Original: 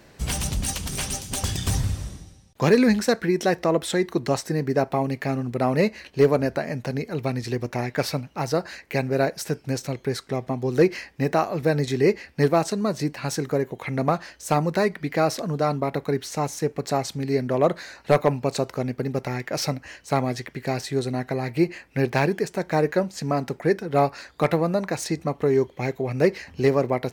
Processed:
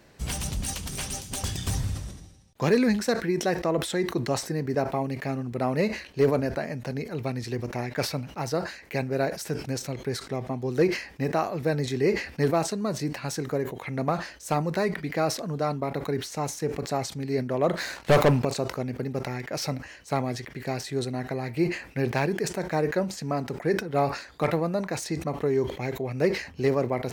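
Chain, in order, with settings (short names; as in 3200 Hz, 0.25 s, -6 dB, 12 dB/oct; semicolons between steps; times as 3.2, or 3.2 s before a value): 17.77–18.45 sample leveller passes 3; sustainer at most 110 dB/s; gain -4.5 dB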